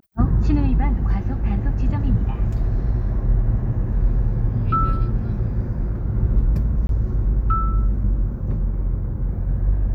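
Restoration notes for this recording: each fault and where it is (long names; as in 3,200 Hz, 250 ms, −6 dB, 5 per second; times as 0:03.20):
0:06.87–0:06.89: drop-out 22 ms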